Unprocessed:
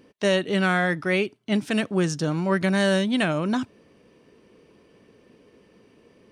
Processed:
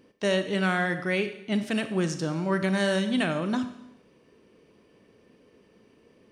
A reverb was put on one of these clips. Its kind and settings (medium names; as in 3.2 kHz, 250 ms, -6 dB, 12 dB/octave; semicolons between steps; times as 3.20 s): Schroeder reverb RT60 0.83 s, combs from 28 ms, DRR 9 dB; trim -4 dB